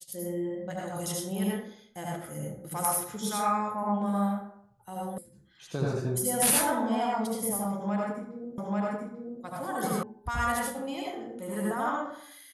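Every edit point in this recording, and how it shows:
5.18 sound cut off
8.58 repeat of the last 0.84 s
10.03 sound cut off

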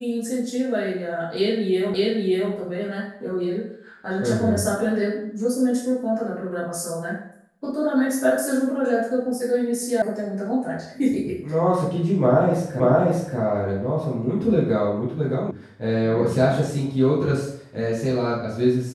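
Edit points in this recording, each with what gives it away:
1.94 repeat of the last 0.58 s
10.02 sound cut off
12.8 repeat of the last 0.58 s
15.51 sound cut off

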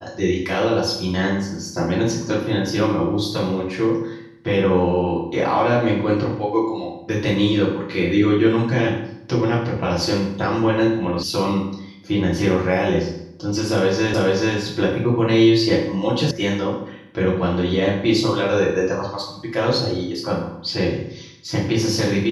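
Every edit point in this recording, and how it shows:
11.23 sound cut off
14.14 repeat of the last 0.43 s
16.31 sound cut off

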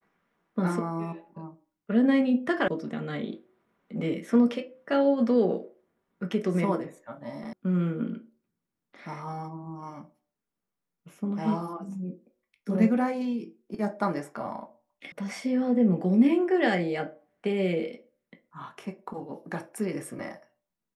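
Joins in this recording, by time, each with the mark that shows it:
2.68 sound cut off
7.53 sound cut off
15.12 sound cut off

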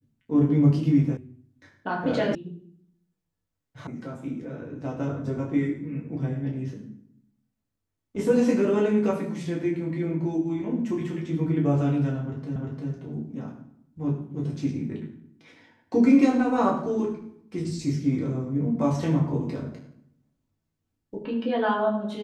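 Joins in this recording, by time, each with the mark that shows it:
1.17 sound cut off
2.35 sound cut off
3.87 sound cut off
12.56 repeat of the last 0.35 s

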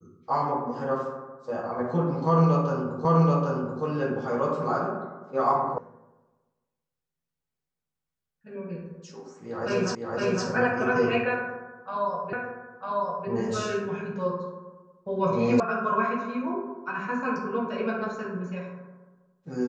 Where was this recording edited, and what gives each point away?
3.05 repeat of the last 0.78 s
5.78 sound cut off
9.95 repeat of the last 0.51 s
12.33 repeat of the last 0.95 s
15.6 sound cut off

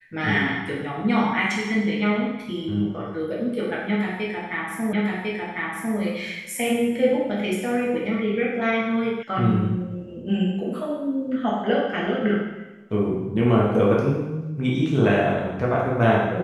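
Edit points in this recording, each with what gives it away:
4.93 repeat of the last 1.05 s
9.23 sound cut off

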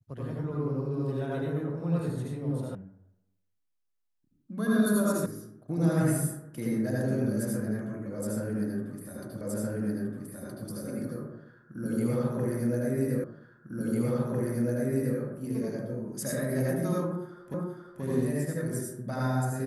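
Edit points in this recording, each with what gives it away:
2.75 sound cut off
5.26 sound cut off
9.41 repeat of the last 1.27 s
13.24 repeat of the last 1.95 s
17.54 repeat of the last 0.48 s

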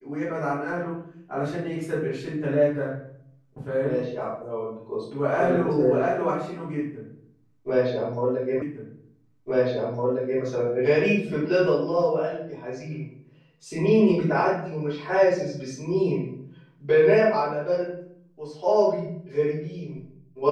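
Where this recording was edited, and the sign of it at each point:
8.62 repeat of the last 1.81 s

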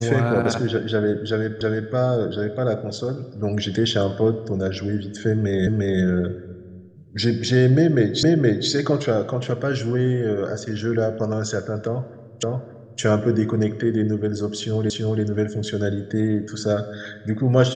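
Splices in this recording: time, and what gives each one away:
1.61 repeat of the last 0.32 s
5.67 repeat of the last 0.35 s
8.23 repeat of the last 0.47 s
12.43 repeat of the last 0.57 s
14.9 repeat of the last 0.33 s

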